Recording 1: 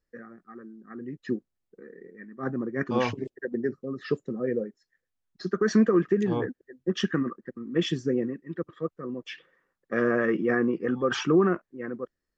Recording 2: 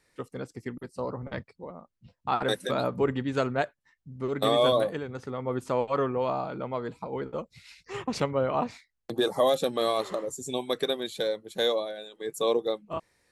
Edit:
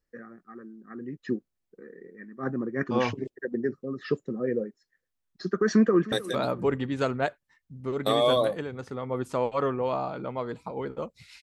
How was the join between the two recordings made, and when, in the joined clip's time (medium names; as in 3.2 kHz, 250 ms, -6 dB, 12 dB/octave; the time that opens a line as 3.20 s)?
recording 1
5.72–6.12 s: echo throw 310 ms, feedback 40%, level -17.5 dB
6.12 s: go over to recording 2 from 2.48 s